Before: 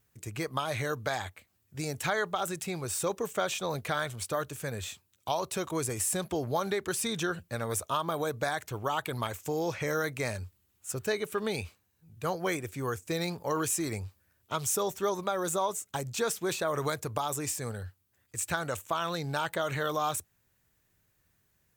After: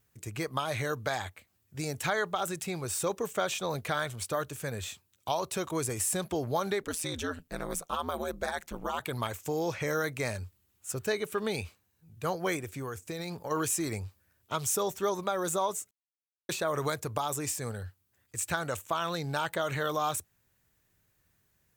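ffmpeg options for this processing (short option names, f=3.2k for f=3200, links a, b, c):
-filter_complex "[0:a]asplit=3[a][b][c];[a]afade=t=out:st=6.82:d=0.02[d];[b]aeval=exprs='val(0)*sin(2*PI*82*n/s)':c=same,afade=t=in:st=6.82:d=0.02,afade=t=out:st=8.99:d=0.02[e];[c]afade=t=in:st=8.99:d=0.02[f];[d][e][f]amix=inputs=3:normalize=0,asplit=3[g][h][i];[g]afade=t=out:st=12.61:d=0.02[j];[h]acompressor=threshold=-33dB:ratio=6:attack=3.2:release=140:knee=1:detection=peak,afade=t=in:st=12.61:d=0.02,afade=t=out:st=13.5:d=0.02[k];[i]afade=t=in:st=13.5:d=0.02[l];[j][k][l]amix=inputs=3:normalize=0,asplit=3[m][n][o];[m]atrim=end=15.91,asetpts=PTS-STARTPTS,afade=t=out:st=15.906:d=0.004:c=hsin[p];[n]atrim=start=15.91:end=16.49,asetpts=PTS-STARTPTS,volume=0[q];[o]atrim=start=16.49,asetpts=PTS-STARTPTS,afade=t=in:d=0.004:c=hsin[r];[p][q][r]concat=n=3:v=0:a=1"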